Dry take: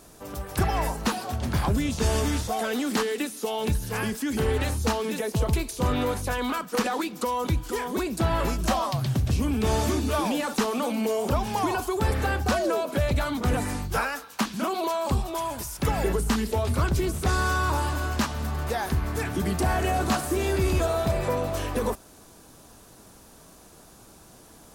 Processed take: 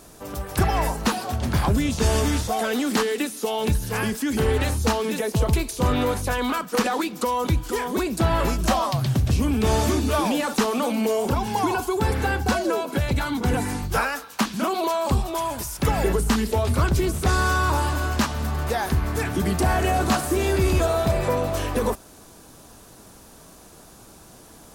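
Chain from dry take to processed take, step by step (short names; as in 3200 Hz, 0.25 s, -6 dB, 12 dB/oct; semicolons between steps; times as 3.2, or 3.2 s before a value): 11.26–13.83 notch comb 610 Hz; gain +3.5 dB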